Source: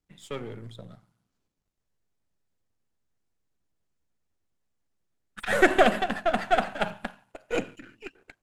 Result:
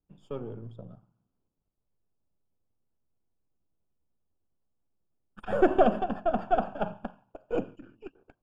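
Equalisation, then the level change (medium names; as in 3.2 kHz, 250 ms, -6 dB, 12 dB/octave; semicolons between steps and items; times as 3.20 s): boxcar filter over 22 samples; 0.0 dB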